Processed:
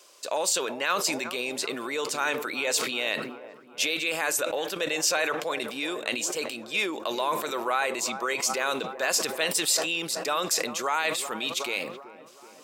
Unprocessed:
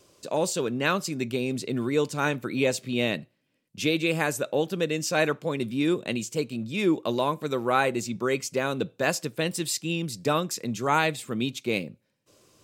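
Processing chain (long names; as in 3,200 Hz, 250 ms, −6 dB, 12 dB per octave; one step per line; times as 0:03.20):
brickwall limiter −20 dBFS, peak gain reduction 10.5 dB
high-pass filter 720 Hz 12 dB per octave
on a send: delay with a low-pass on its return 378 ms, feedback 64%, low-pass 1,100 Hz, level −13 dB
on the sum: level that may fall only so fast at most 63 dB per second
level +7 dB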